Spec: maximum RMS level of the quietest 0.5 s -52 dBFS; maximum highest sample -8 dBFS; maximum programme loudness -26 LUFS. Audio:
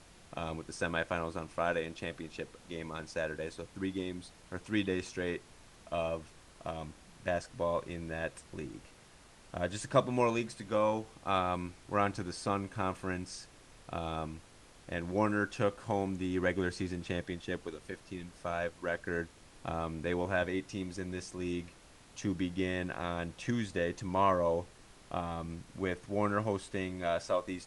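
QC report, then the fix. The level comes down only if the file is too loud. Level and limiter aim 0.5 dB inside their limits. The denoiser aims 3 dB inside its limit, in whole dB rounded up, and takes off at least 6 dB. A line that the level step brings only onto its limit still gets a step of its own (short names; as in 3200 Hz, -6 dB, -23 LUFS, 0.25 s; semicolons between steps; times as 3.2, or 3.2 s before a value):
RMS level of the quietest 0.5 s -58 dBFS: OK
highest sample -12.5 dBFS: OK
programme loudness -35.5 LUFS: OK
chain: none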